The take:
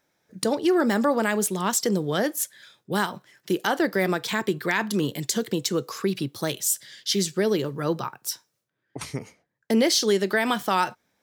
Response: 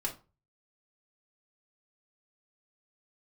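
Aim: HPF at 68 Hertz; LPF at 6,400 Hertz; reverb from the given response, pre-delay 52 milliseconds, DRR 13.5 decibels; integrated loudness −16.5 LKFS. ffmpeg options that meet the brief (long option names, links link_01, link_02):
-filter_complex "[0:a]highpass=68,lowpass=6400,asplit=2[link_01][link_02];[1:a]atrim=start_sample=2205,adelay=52[link_03];[link_02][link_03]afir=irnorm=-1:irlink=0,volume=-16.5dB[link_04];[link_01][link_04]amix=inputs=2:normalize=0,volume=8.5dB"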